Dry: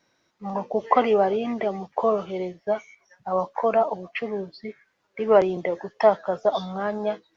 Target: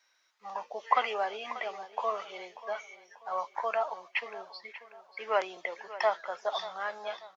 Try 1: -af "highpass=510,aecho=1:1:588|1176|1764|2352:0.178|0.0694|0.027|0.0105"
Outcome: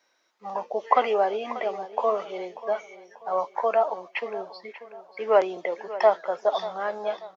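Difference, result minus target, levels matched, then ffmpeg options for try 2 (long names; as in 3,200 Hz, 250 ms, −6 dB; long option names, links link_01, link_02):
500 Hz band +3.0 dB
-af "highpass=1200,aecho=1:1:588|1176|1764|2352:0.178|0.0694|0.027|0.0105"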